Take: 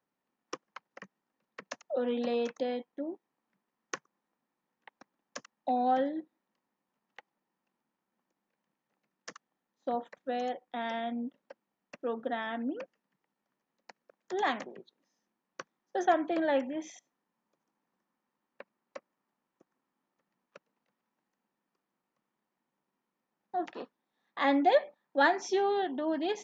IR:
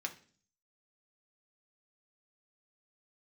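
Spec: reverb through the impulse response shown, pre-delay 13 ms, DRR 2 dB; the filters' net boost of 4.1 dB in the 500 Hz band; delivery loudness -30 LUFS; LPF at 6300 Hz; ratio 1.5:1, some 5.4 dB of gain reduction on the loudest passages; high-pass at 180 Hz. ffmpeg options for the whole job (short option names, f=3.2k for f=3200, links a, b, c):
-filter_complex "[0:a]highpass=180,lowpass=6.3k,equalizer=f=500:t=o:g=5,acompressor=threshold=-30dB:ratio=1.5,asplit=2[a][b];[1:a]atrim=start_sample=2205,adelay=13[c];[b][c]afir=irnorm=-1:irlink=0,volume=-3dB[d];[a][d]amix=inputs=2:normalize=0,volume=1dB"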